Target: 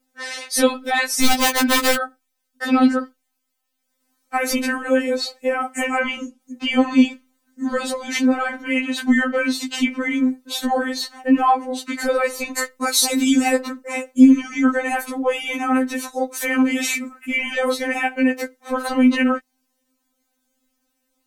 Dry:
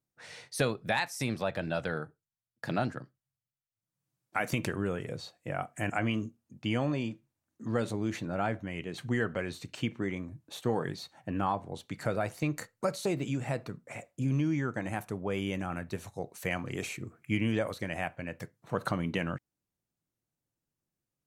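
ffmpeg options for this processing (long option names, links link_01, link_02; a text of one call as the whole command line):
ffmpeg -i in.wav -filter_complex "[0:a]asettb=1/sr,asplit=3[link_01][link_02][link_03];[link_01]atrim=end=1.224[link_04];[link_02]atrim=start=1.22:end=1.95,asetpts=PTS-STARTPTS,afade=type=in:duration=0.004:curve=qsin,afade=type=out:start_time=0.726:duration=0.004:curve=qsin,aeval=exprs='(mod(23.7*val(0)+1,2)-1)/23.7':channel_layout=same[link_05];[link_03]atrim=start=1.946[link_06];[link_04][link_05]acrossfade=duration=0.004:curve1=hsin:curve2=qsin[link_07];[link_07][link_06]acrossfade=duration=0.004:curve1=qsin:curve2=hsin,asettb=1/sr,asplit=3[link_08][link_09][link_10];[link_08]atrim=end=5.844[link_11];[link_09]atrim=start=5.84:end=6.41,asetpts=PTS-STARTPTS,afade=type=in:duration=0.004:curve=qsin,afade=type=out:start_time=0.566:duration=0.004:curve=qsin,lowpass=9800[link_12];[link_10]atrim=start=6.406[link_13];[link_11][link_12]acrossfade=duration=0.004:curve1=hsin:curve2=qsin[link_14];[link_14][link_13]acrossfade=duration=0.004:curve1=qsin:curve2=hsin,asettb=1/sr,asplit=3[link_15][link_16][link_17];[link_15]atrim=end=12.874[link_18];[link_16]atrim=start=12.87:end=13.59,asetpts=PTS-STARTPTS,afade=type=in:duration=0.004:curve=qsin,afade=type=out:start_time=0.716:duration=0.004:curve=qsin,highshelf=frequency=4700:gain=11[link_19];[link_17]atrim=start=13.586[link_20];[link_18][link_19]acrossfade=duration=0.004:curve1=hsin:curve2=qsin[link_21];[link_21][link_20]acrossfade=duration=0.004:curve1=qsin:curve2=hsin,alimiter=level_in=23.5dB:limit=-1dB:release=50:level=0:latency=1,afftfilt=real='re*3.46*eq(mod(b,12),0)':imag='im*3.46*eq(mod(b,12),0)':win_size=2048:overlap=0.75,volume=-3dB" out.wav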